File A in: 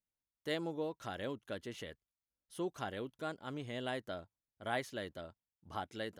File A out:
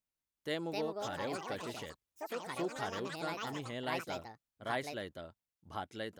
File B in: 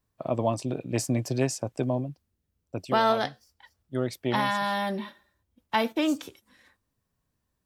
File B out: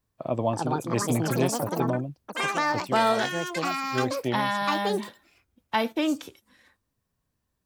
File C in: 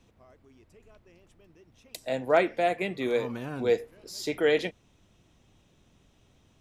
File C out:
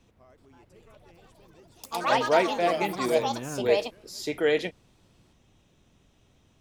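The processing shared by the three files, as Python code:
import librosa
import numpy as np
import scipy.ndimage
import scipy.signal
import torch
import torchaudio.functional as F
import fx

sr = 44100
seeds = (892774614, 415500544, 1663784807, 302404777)

y = fx.echo_pitch(x, sr, ms=378, semitones=5, count=3, db_per_echo=-3.0)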